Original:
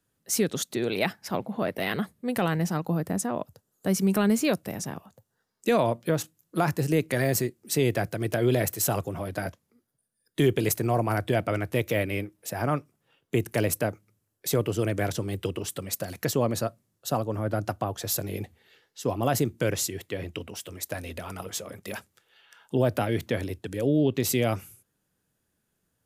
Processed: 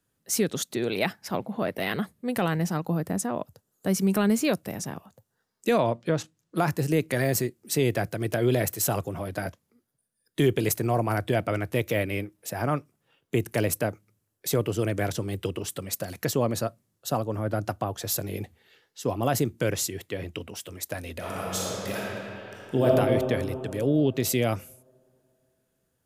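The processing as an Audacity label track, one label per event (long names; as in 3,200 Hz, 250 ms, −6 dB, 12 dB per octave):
5.780000	6.570000	low-pass filter 6,200 Hz
21.170000	22.860000	thrown reverb, RT60 2.9 s, DRR −5 dB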